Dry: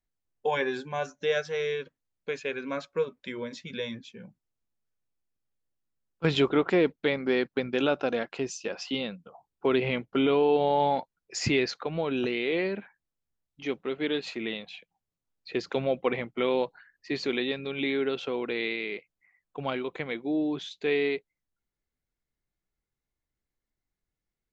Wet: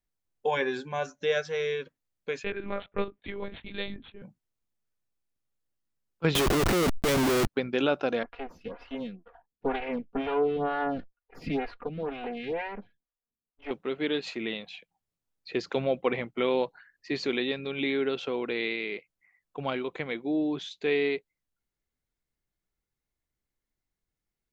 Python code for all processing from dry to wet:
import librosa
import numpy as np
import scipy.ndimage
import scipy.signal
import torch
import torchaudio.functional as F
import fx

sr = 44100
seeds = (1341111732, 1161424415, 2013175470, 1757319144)

y = fx.chain(x, sr, fx.resample_bad(factor=6, down='none', up='hold'),
    fx.lpc_monotone(seeds[0], pitch_hz=200.0, order=10), at=(2.44, 4.22))
y = fx.chain(y, sr, fx.schmitt(flips_db=-39.0),
    fx.env_flatten(amount_pct=100), at=(6.35, 7.47))
y = fx.chain(y, sr, fx.lower_of_two(delay_ms=4.2),
    fx.air_absorb(metres=370.0),
    fx.stagger_phaser(hz=2.1), at=(8.23, 13.71))